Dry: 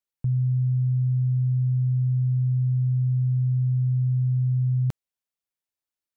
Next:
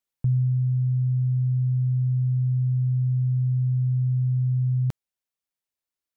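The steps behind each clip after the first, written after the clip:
speech leveller 0.5 s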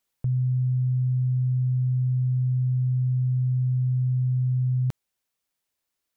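brickwall limiter −28 dBFS, peak gain reduction 11 dB
level +8 dB

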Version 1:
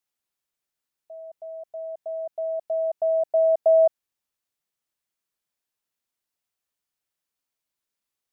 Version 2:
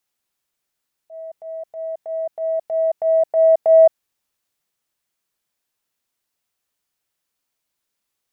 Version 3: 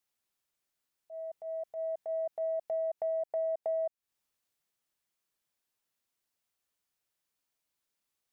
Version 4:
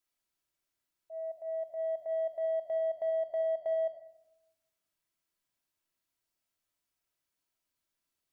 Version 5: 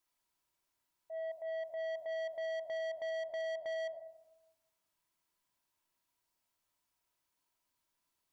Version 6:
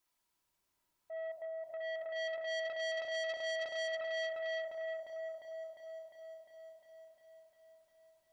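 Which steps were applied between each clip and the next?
transient designer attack −8 dB, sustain +1 dB; level +7 dB
downward compressor 12 to 1, threshold −24 dBFS, peak gain reduction 16 dB; level −6.5 dB
in parallel at −6 dB: soft clipping −35 dBFS, distortion −13 dB; on the sum: rectangular room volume 2,600 cubic metres, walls furnished, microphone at 2.9 metres; level −7 dB
parametric band 960 Hz +9 dB 0.31 octaves; soft clipping −38 dBFS, distortion −9 dB; level +1.5 dB
echo whose low-pass opens from repeat to repeat 352 ms, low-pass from 400 Hz, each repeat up 2 octaves, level 0 dB; saturating transformer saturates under 2,000 Hz; level +1.5 dB

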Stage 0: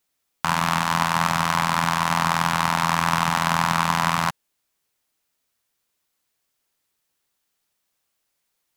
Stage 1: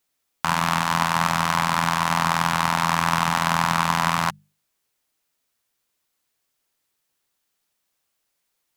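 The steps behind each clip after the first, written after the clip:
mains-hum notches 50/100/150/200 Hz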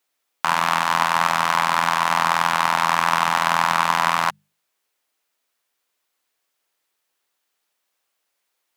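bass and treble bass −14 dB, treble −4 dB
level +3 dB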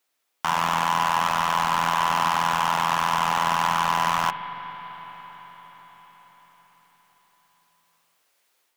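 automatic gain control gain up to 7 dB
hard clipping −15.5 dBFS, distortion −6 dB
convolution reverb RT60 5.8 s, pre-delay 42 ms, DRR 9.5 dB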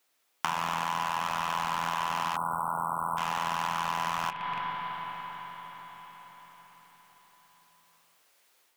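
loose part that buzzes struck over −45 dBFS, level −28 dBFS
time-frequency box erased 0:02.36–0:03.17, 1,500–7,800 Hz
downward compressor 10 to 1, threshold −29 dBFS, peak gain reduction 11.5 dB
level +2.5 dB

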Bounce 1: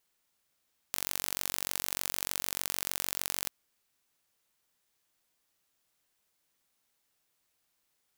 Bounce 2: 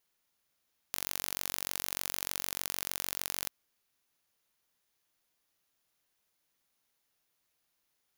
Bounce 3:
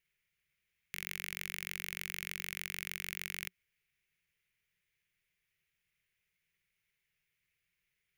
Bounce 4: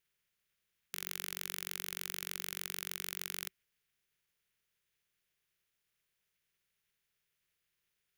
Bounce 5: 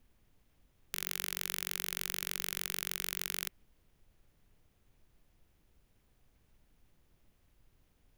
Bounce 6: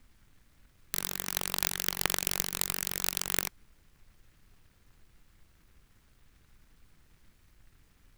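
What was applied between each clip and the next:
notch filter 8,000 Hz, Q 6.2; level −1.5 dB
drawn EQ curve 180 Hz 0 dB, 270 Hz −25 dB, 380 Hz −7 dB, 750 Hz −21 dB, 1,200 Hz −14 dB, 2,200 Hz +5 dB, 4,100 Hz −12 dB; level +3 dB
ceiling on every frequency bin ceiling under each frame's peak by 14 dB
background noise brown −70 dBFS; level +3.5 dB
short delay modulated by noise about 1,600 Hz, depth 0.39 ms; level +7 dB

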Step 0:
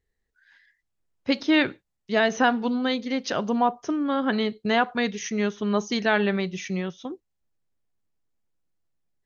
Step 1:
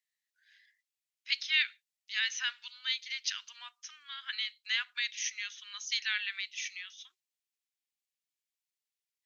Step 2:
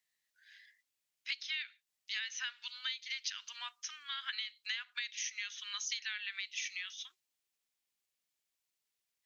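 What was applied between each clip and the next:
inverse Chebyshev high-pass filter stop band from 620 Hz, stop band 60 dB
downward compressor 12 to 1, threshold −40 dBFS, peak gain reduction 17.5 dB; level +4.5 dB

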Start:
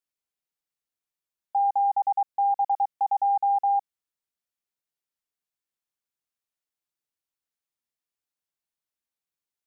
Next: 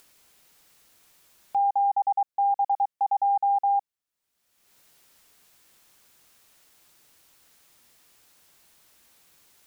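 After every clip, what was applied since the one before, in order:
upward compression, threshold −35 dBFS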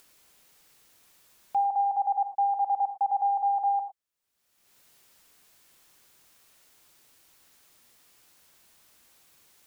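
reverb whose tail is shaped and stops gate 130 ms rising, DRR 8 dB
level −1.5 dB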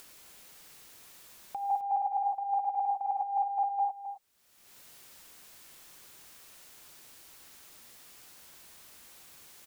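compressor whose output falls as the input rises −30 dBFS, ratio −0.5
on a send: single-tap delay 263 ms −11 dB
on the sum: level +1 dB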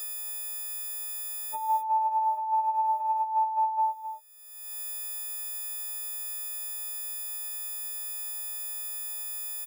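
every partial snapped to a pitch grid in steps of 6 semitones
double-tracking delay 18 ms −8 dB

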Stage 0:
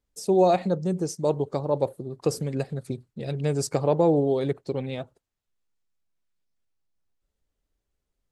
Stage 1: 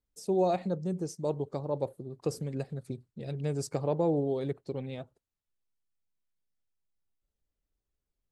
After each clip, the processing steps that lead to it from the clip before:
low-shelf EQ 400 Hz +3.5 dB
level −9 dB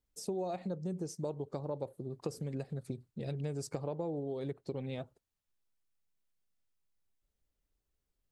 downward compressor 6 to 1, threshold −36 dBFS, peak gain reduction 13 dB
level +1.5 dB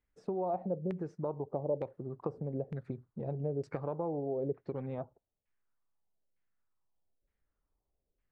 auto-filter low-pass saw down 1.1 Hz 480–2,200 Hz

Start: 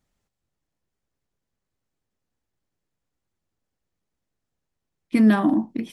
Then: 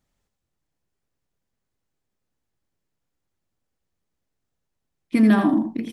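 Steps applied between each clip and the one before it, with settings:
single-tap delay 84 ms −7.5 dB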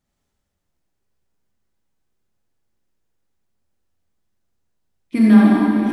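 convolution reverb RT60 2.8 s, pre-delay 23 ms, DRR −4.5 dB
level −2.5 dB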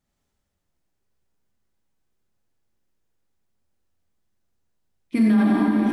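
brickwall limiter −10 dBFS, peak gain reduction 9 dB
level −1.5 dB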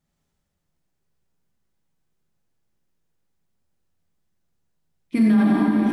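parametric band 160 Hz +9.5 dB 0.26 octaves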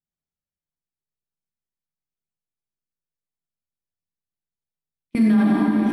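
noise gate with hold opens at −13 dBFS

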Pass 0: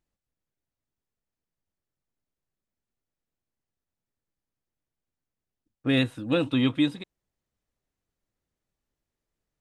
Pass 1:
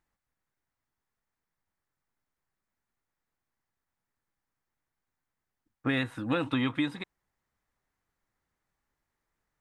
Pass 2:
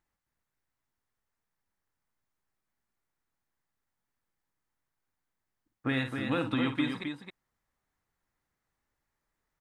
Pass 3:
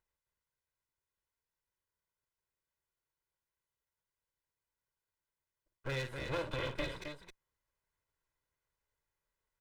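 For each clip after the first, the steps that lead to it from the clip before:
flat-topped bell 1,300 Hz +8.5 dB; downward compressor 6 to 1, threshold −25 dBFS, peak gain reduction 8.5 dB
loudspeakers that aren't time-aligned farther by 18 metres −9 dB, 91 metres −6 dB; level −2 dB
lower of the sound and its delayed copy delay 2 ms; level −4.5 dB

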